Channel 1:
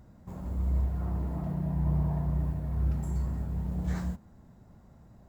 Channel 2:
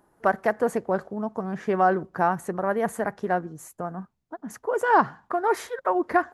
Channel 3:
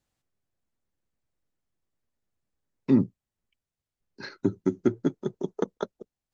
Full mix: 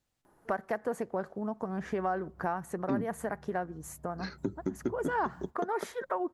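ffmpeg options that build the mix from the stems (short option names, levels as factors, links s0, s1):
-filter_complex "[0:a]agate=range=0.0224:threshold=0.00447:ratio=3:detection=peak,adelay=1350,volume=0.237,afade=t=in:st=4.37:d=0.6:silence=0.298538[s0];[1:a]adelay=250,volume=0.891[s1];[2:a]volume=0.944[s2];[s0][s1][s2]amix=inputs=3:normalize=0,acompressor=threshold=0.0224:ratio=2.5"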